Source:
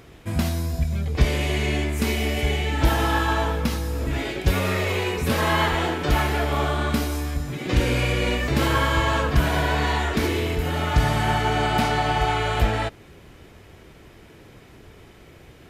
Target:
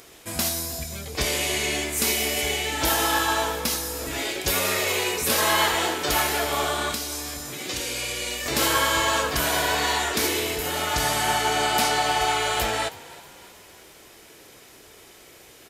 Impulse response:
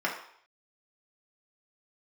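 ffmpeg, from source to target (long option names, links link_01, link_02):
-filter_complex "[0:a]bass=frequency=250:gain=-14,treble=frequency=4000:gain=13,asplit=5[link_01][link_02][link_03][link_04][link_05];[link_02]adelay=319,afreqshift=40,volume=-20dB[link_06];[link_03]adelay=638,afreqshift=80,volume=-26.2dB[link_07];[link_04]adelay=957,afreqshift=120,volume=-32.4dB[link_08];[link_05]adelay=1276,afreqshift=160,volume=-38.6dB[link_09];[link_01][link_06][link_07][link_08][link_09]amix=inputs=5:normalize=0,asettb=1/sr,asplit=3[link_10][link_11][link_12];[link_10]atrim=end=6.924[link_13];[link_11]atrim=start=6.92:end=8.46,asetpts=PTS-STARTPTS,afade=type=in:duration=0.004:curve=qsin,afade=type=out:start_time=1.536:duration=0.004:curve=qsin,acrossover=split=88|2900|7900[link_14][link_15][link_16][link_17];[link_14]acompressor=threshold=-45dB:ratio=4[link_18];[link_15]acompressor=threshold=-34dB:ratio=4[link_19];[link_16]acompressor=threshold=-31dB:ratio=4[link_20];[link_17]acompressor=threshold=-38dB:ratio=4[link_21];[link_18][link_19][link_20][link_21]amix=inputs=4:normalize=0[link_22];[link_12]atrim=start=8.456[link_23];[link_13][link_22]acrossfade=duration=0.004:curve1=hsin:curve2=qsin[link_24];[link_24][link_23]acrossfade=duration=0.004:curve1=qsin:curve2=hsin"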